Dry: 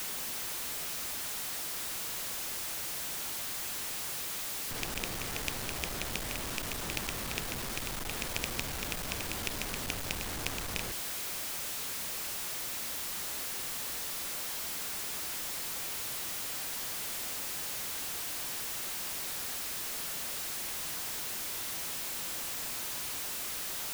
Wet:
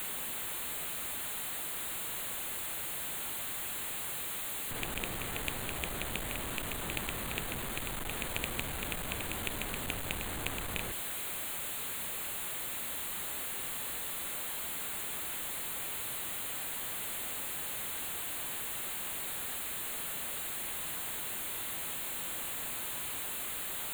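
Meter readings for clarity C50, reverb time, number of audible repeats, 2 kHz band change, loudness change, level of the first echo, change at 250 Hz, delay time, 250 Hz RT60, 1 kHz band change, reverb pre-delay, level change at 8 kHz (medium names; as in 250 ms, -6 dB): no reverb, no reverb, no echo, 0.0 dB, -1.0 dB, no echo, 0.0 dB, no echo, no reverb, 0.0 dB, no reverb, -2.0 dB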